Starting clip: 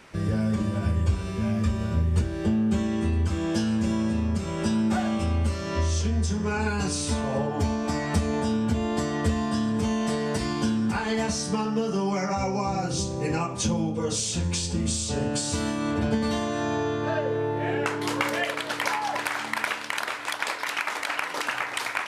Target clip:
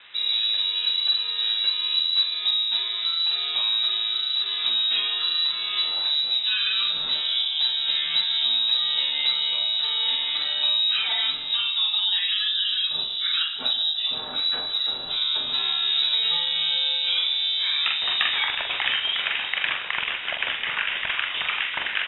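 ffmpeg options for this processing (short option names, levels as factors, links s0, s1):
-filter_complex "[0:a]highshelf=f=2200:g=-7,asplit=2[s0][s1];[s1]aecho=0:1:44|157:0.562|0.2[s2];[s0][s2]amix=inputs=2:normalize=0,lowpass=f=3400:t=q:w=0.5098,lowpass=f=3400:t=q:w=0.6013,lowpass=f=3400:t=q:w=0.9,lowpass=f=3400:t=q:w=2.563,afreqshift=-4000,aemphasis=mode=reproduction:type=75fm,acrossover=split=3100[s3][s4];[s4]acompressor=threshold=0.0562:ratio=4:attack=1:release=60[s5];[s3][s5]amix=inputs=2:normalize=0,volume=2.24"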